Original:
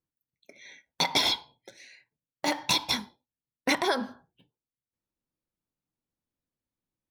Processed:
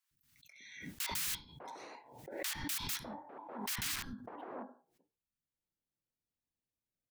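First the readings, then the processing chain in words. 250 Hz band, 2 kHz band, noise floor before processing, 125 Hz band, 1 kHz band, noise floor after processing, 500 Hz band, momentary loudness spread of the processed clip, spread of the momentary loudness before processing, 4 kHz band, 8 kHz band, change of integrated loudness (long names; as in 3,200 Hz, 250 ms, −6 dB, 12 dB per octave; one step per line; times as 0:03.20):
−12.0 dB, −11.5 dB, below −85 dBFS, −4.5 dB, −13.5 dB, below −85 dBFS, −13.5 dB, 16 LU, 9 LU, −14.5 dB, −3.5 dB, −12.5 dB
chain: wrap-around overflow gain 26 dB
three-band delay without the direct sound highs, lows, mids 110/600 ms, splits 260/1,100 Hz
background raised ahead of every attack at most 58 dB per second
level −5.5 dB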